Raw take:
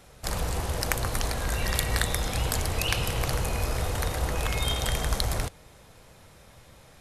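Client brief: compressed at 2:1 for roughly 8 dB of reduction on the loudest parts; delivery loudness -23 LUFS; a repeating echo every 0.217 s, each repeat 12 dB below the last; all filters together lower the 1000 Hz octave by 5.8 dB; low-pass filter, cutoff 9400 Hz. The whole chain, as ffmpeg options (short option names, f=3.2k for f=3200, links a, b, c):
-af "lowpass=9.4k,equalizer=f=1k:t=o:g=-8,acompressor=threshold=-38dB:ratio=2,aecho=1:1:217|434|651:0.251|0.0628|0.0157,volume=13.5dB"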